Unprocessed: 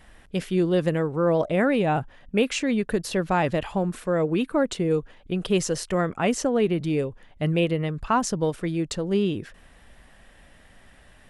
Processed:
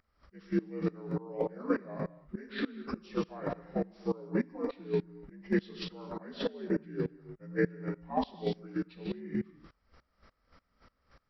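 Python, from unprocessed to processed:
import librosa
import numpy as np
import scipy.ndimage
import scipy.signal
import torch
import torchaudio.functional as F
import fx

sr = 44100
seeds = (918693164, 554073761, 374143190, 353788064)

y = fx.partial_stretch(x, sr, pct=82)
y = fx.rev_gated(y, sr, seeds[0], gate_ms=280, shape='flat', drr_db=5.0)
y = fx.volume_shaper(y, sr, bpm=102, per_beat=2, depth_db=-22, release_ms=227.0, shape='slow start')
y = y * 10.0 ** (-5.0 / 20.0)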